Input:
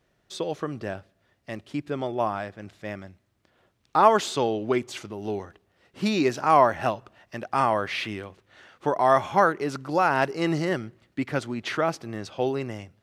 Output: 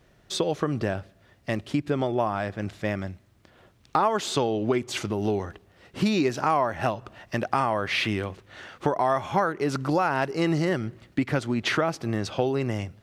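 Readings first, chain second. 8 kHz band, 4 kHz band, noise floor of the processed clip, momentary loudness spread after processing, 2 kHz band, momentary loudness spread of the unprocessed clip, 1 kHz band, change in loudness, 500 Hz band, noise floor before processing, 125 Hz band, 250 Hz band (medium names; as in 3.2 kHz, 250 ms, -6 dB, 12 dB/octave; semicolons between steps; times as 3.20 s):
+2.0 dB, +3.0 dB, -60 dBFS, 8 LU, 0.0 dB, 18 LU, -3.0 dB, -1.0 dB, -1.0 dB, -70 dBFS, +5.0 dB, +2.5 dB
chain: bass shelf 160 Hz +5.5 dB; compression 4:1, threshold -30 dBFS, peak gain reduction 16 dB; trim +8 dB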